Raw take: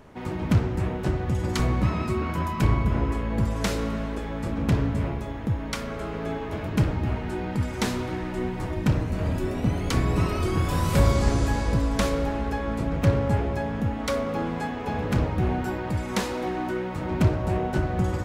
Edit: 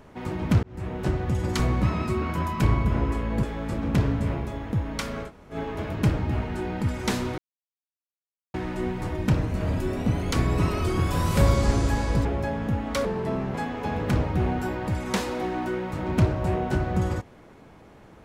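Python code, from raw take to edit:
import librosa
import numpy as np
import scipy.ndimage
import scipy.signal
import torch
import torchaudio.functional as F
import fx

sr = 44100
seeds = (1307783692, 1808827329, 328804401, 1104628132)

y = fx.edit(x, sr, fx.fade_in_span(start_s=0.63, length_s=0.42),
    fx.cut(start_s=3.43, length_s=0.74),
    fx.room_tone_fill(start_s=6.01, length_s=0.27, crossfade_s=0.1),
    fx.insert_silence(at_s=8.12, length_s=1.16),
    fx.cut(start_s=11.83, length_s=1.55),
    fx.speed_span(start_s=14.18, length_s=0.39, speed=0.79), tone=tone)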